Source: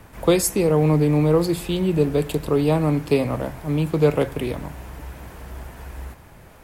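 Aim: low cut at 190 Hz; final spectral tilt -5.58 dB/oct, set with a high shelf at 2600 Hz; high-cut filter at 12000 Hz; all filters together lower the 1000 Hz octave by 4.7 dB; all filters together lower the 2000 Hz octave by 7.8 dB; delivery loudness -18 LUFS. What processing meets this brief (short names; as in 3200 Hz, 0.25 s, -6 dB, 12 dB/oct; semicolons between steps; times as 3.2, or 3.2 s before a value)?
HPF 190 Hz; LPF 12000 Hz; bell 1000 Hz -4 dB; bell 2000 Hz -5 dB; high shelf 2600 Hz -8 dB; gain +5 dB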